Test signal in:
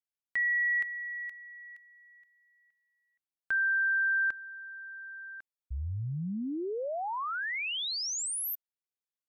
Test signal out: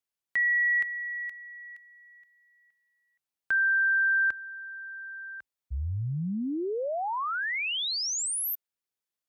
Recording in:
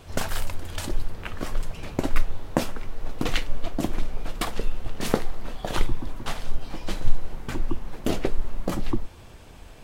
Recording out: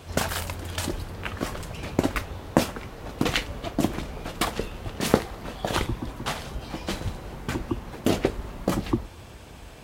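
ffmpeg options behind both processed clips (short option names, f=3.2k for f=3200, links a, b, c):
-af "highpass=f=43:w=0.5412,highpass=f=43:w=1.3066,volume=3.5dB"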